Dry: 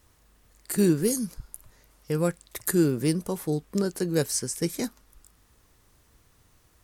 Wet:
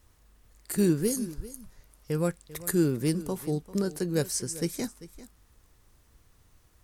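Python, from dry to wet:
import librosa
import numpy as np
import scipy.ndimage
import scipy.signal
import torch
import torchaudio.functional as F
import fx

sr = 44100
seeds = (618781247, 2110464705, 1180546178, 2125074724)

p1 = fx.low_shelf(x, sr, hz=75.0, db=7.5)
p2 = p1 + fx.echo_single(p1, sr, ms=394, db=-17.0, dry=0)
y = p2 * 10.0 ** (-3.0 / 20.0)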